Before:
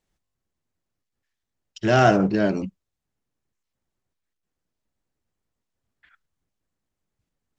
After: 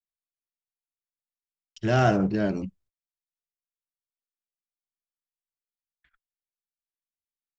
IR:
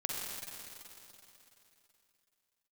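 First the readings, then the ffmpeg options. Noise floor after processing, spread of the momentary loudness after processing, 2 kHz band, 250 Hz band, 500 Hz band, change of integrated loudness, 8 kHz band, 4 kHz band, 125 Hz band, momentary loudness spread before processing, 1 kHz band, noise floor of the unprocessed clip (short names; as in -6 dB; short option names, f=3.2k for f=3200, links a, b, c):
under -85 dBFS, 13 LU, -6.0 dB, -3.5 dB, -5.5 dB, -4.5 dB, n/a, -6.0 dB, -1.0 dB, 13 LU, -6.0 dB, -83 dBFS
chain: -af "agate=range=-34dB:threshold=-56dB:ratio=16:detection=peak,lowshelf=f=120:g=10.5,volume=-6dB"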